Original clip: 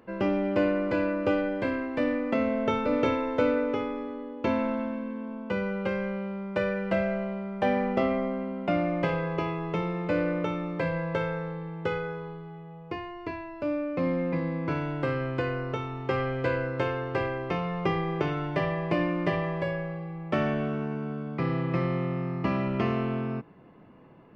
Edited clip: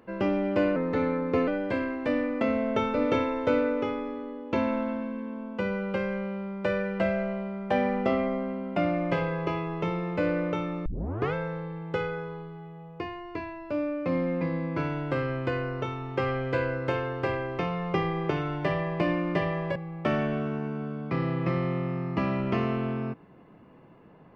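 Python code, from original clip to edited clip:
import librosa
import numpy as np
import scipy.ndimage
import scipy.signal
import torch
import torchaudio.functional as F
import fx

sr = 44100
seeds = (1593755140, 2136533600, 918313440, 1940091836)

y = fx.edit(x, sr, fx.speed_span(start_s=0.76, length_s=0.63, speed=0.88),
    fx.tape_start(start_s=10.77, length_s=0.48),
    fx.cut(start_s=19.67, length_s=0.36), tone=tone)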